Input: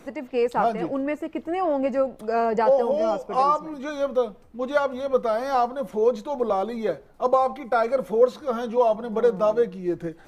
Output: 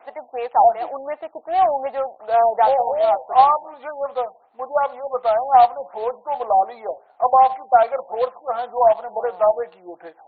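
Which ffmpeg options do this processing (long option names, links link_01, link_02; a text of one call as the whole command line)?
ffmpeg -i in.wav -af "highpass=frequency=750:width_type=q:width=4.9,acrusher=bits=4:mode=log:mix=0:aa=0.000001,afftfilt=real='re*lt(b*sr/1024,960*pow(4600/960,0.5+0.5*sin(2*PI*2.7*pts/sr)))':imag='im*lt(b*sr/1024,960*pow(4600/960,0.5+0.5*sin(2*PI*2.7*pts/sr)))':win_size=1024:overlap=0.75,volume=-2dB" out.wav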